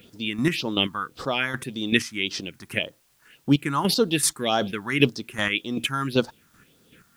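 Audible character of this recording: chopped level 2.6 Hz, depth 60%, duty 25%; phasing stages 4, 1.8 Hz, lowest notch 450–2400 Hz; a quantiser's noise floor 12-bit, dither triangular

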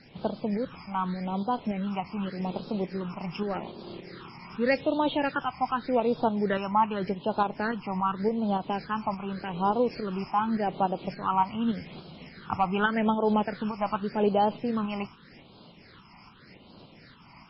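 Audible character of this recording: tremolo saw up 3.5 Hz, depth 45%; phasing stages 8, 0.85 Hz, lowest notch 470–1900 Hz; MP3

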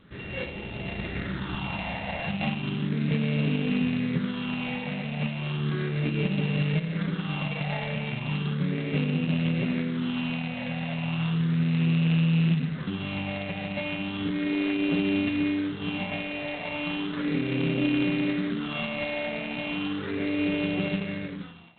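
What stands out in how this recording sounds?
a buzz of ramps at a fixed pitch in blocks of 16 samples; phasing stages 6, 0.35 Hz, lowest notch 340–1300 Hz; G.726

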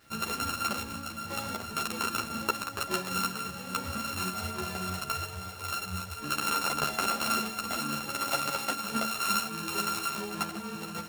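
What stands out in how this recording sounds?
a buzz of ramps at a fixed pitch in blocks of 32 samples; tremolo saw up 2 Hz, depth 35%; a quantiser's noise floor 10-bit, dither none; a shimmering, thickened sound

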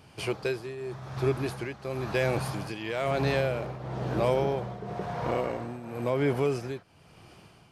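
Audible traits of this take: tremolo triangle 0.99 Hz, depth 80%

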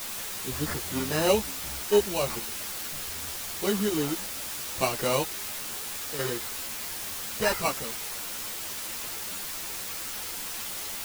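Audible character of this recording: aliases and images of a low sample rate 3.4 kHz, jitter 0%; random-step tremolo 2.1 Hz, depth 95%; a quantiser's noise floor 6-bit, dither triangular; a shimmering, thickened sound

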